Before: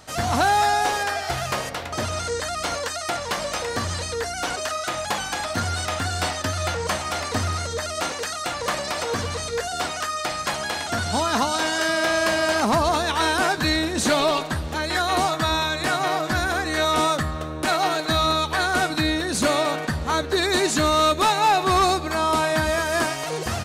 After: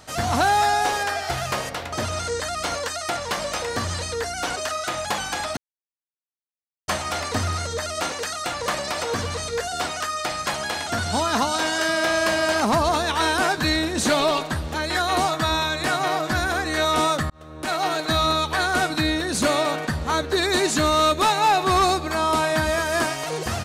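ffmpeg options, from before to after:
-filter_complex "[0:a]asplit=4[a][b][c][d];[a]atrim=end=5.57,asetpts=PTS-STARTPTS,afade=t=out:st=5.566:d=0.004:c=hsin[e];[b]atrim=start=5.57:end=6.88,asetpts=PTS-STARTPTS,volume=0[f];[c]atrim=start=6.88:end=17.3,asetpts=PTS-STARTPTS,afade=t=in:d=0.004:c=hsin,afade=t=out:st=10.416:d=0.004:c=hsin[g];[d]atrim=start=17.3,asetpts=PTS-STARTPTS,afade=t=in:d=0.89:c=qsin[h];[e][f][g][h]concat=n=4:v=0:a=1"

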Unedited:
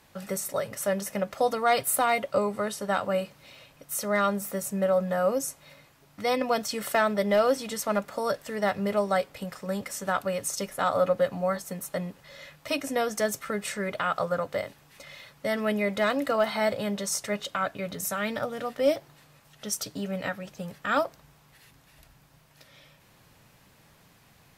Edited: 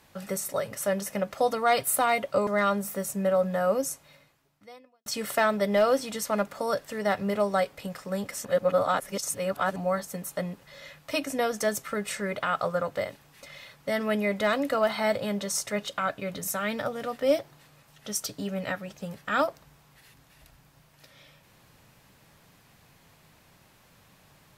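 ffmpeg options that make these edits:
-filter_complex "[0:a]asplit=5[a][b][c][d][e];[a]atrim=end=2.472[f];[b]atrim=start=4.038:end=6.63,asetpts=PTS-STARTPTS,afade=t=out:st=1.422:d=1.17:c=qua[g];[c]atrim=start=6.63:end=10.022,asetpts=PTS-STARTPTS,afade=t=in:d=0.004:c=hsin[h];[d]atrim=start=10.018:end=11.332,asetpts=PTS-STARTPTS,areverse[i];[e]atrim=start=11.328[j];[g][h]concat=n=2:v=0:a=1[k];[f][k]acrossfade=d=0.004:c1=hsin:c2=hsin[l];[l][i]acrossfade=d=0.004:c1=hsin:c2=hsin[m];[m][j]acrossfade=d=0.004:c1=hsin:c2=hsin"

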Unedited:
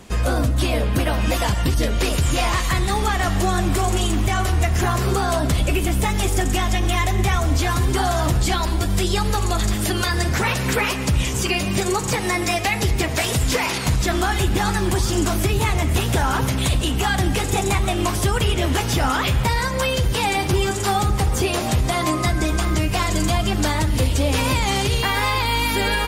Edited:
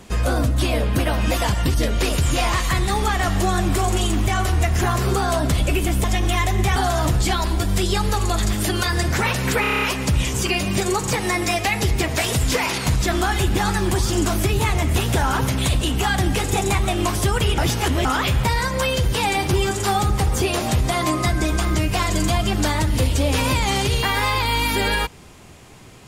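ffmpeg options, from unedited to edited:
-filter_complex "[0:a]asplit=12[a][b][c][d][e][f][g][h][i][j][k][l];[a]atrim=end=6.042[m];[b]atrim=start=6.638:end=7.362[n];[c]atrim=start=7.968:end=10.852[o];[d]atrim=start=10.818:end=10.852[p];[e]atrim=start=10.818:end=10.852[q];[f]atrim=start=10.818:end=10.852[r];[g]atrim=start=10.818:end=10.852[s];[h]atrim=start=10.818:end=10.852[t];[i]atrim=start=10.818:end=10.852[u];[j]atrim=start=10.818:end=18.582[v];[k]atrim=start=18.578:end=19.052,asetpts=PTS-STARTPTS,areverse[w];[l]atrim=start=19.048[x];[m][n]acrossfade=d=0.004:c1=hsin:c2=hsin[y];[y][o]acrossfade=d=0.004:c1=hsin:c2=hsin[z];[z][p]acrossfade=d=0.004:c1=hsin:c2=hsin[aa];[aa][q]acrossfade=d=0.004:c1=hsin:c2=hsin[ab];[ab][r]acrossfade=d=0.004:c1=hsin:c2=hsin[ac];[ac][s]acrossfade=d=0.004:c1=hsin:c2=hsin[ad];[ad][t]acrossfade=d=0.004:c1=hsin:c2=hsin[ae];[ae][u]acrossfade=d=0.004:c1=hsin:c2=hsin[af];[af][v]acrossfade=d=0.004:c1=hsin:c2=hsin[ag];[ag][w]acrossfade=d=0.004:c1=hsin:c2=hsin[ah];[ah][x]acrossfade=d=0.004:c1=hsin:c2=hsin"

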